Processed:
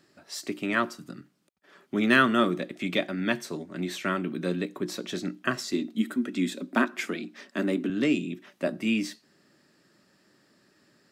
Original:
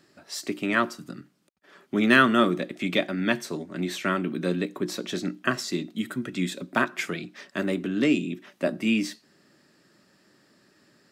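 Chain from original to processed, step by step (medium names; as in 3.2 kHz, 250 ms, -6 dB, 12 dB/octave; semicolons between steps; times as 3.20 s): 5.73–7.90 s: resonant low shelf 170 Hz -10 dB, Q 3; trim -2.5 dB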